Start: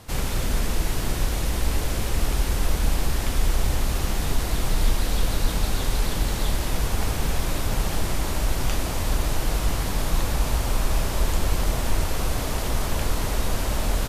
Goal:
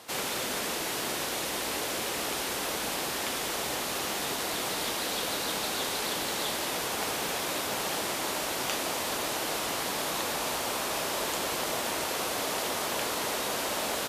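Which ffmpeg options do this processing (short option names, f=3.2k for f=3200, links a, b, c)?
-af "highpass=350,equalizer=f=3.4k:w=1.5:g=2"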